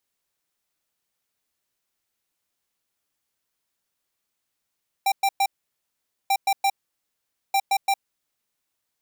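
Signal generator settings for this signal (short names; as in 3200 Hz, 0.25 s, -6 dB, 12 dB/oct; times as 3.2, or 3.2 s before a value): beep pattern square 787 Hz, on 0.06 s, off 0.11 s, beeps 3, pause 0.84 s, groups 3, -20 dBFS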